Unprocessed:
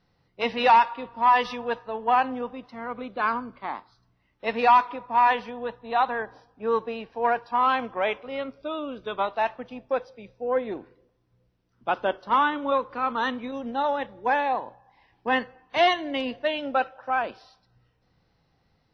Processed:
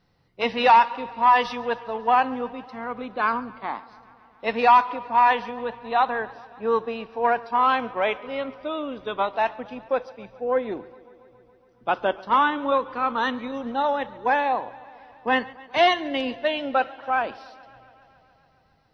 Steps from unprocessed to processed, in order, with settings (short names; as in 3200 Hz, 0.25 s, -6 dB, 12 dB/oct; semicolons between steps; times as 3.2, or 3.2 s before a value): warbling echo 0.139 s, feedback 76%, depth 70 cents, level -22 dB; gain +2 dB